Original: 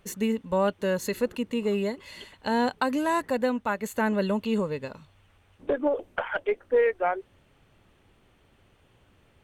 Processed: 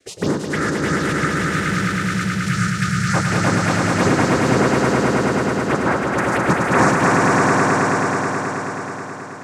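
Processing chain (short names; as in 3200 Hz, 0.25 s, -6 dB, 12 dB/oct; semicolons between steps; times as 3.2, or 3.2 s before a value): noise vocoder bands 3; envelope phaser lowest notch 160 Hz, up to 3000 Hz, full sweep at -21 dBFS; spectral gain 0.45–3.14, 200–1200 Hz -27 dB; swelling echo 0.107 s, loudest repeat 5, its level -3.5 dB; on a send at -16.5 dB: reverb, pre-delay 3 ms; on the sum: gain +6.5 dB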